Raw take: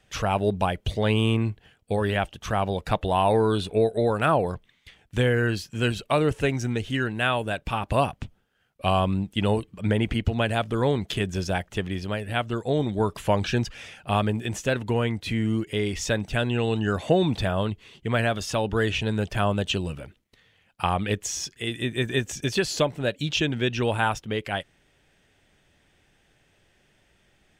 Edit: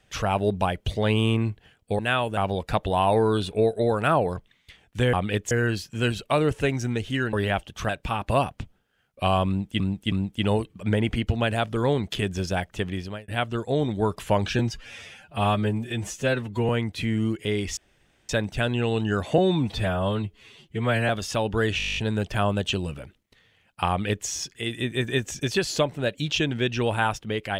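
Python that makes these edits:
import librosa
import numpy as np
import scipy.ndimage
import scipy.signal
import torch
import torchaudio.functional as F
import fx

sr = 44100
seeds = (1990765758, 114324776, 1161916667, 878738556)

y = fx.edit(x, sr, fx.swap(start_s=1.99, length_s=0.56, other_s=7.13, other_length_s=0.38),
    fx.repeat(start_s=9.1, length_s=0.32, count=3),
    fx.fade_out_span(start_s=11.85, length_s=0.41, curve='qsin'),
    fx.stretch_span(start_s=13.57, length_s=1.4, factor=1.5),
    fx.insert_room_tone(at_s=16.05, length_s=0.52),
    fx.stretch_span(start_s=17.14, length_s=1.14, factor=1.5),
    fx.stutter(start_s=18.97, slice_s=0.02, count=10),
    fx.duplicate(start_s=20.9, length_s=0.38, to_s=5.31), tone=tone)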